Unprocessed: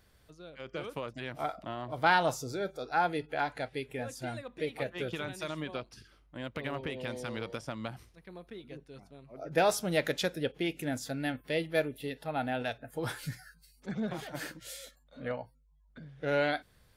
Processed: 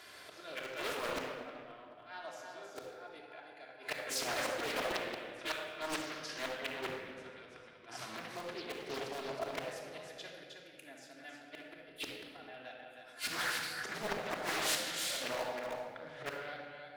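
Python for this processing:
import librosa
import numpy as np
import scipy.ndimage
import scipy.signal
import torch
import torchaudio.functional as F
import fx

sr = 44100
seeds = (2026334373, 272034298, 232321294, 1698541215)

p1 = fx.auto_swell(x, sr, attack_ms=235.0)
p2 = fx.weighting(p1, sr, curve='A')
p3 = p2 + fx.echo_single(p2, sr, ms=316, db=-6.0, dry=0)
p4 = fx.gate_flip(p3, sr, shuts_db=-33.0, range_db=-31)
p5 = (np.mod(10.0 ** (46.5 / 20.0) * p4 + 1.0, 2.0) - 1.0) / 10.0 ** (46.5 / 20.0)
p6 = p4 + (p5 * 10.0 ** (-6.5 / 20.0))
p7 = fx.low_shelf(p6, sr, hz=260.0, db=-7.0)
p8 = fx.room_shoebox(p7, sr, seeds[0], volume_m3=3300.0, walls='mixed', distance_m=3.1)
p9 = fx.doppler_dist(p8, sr, depth_ms=0.6)
y = p9 * 10.0 ** (10.0 / 20.0)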